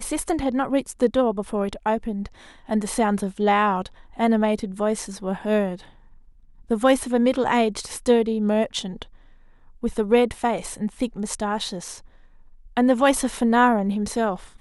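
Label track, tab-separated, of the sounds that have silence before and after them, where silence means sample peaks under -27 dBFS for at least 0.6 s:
6.710000	9.020000	sound
9.830000	11.920000	sound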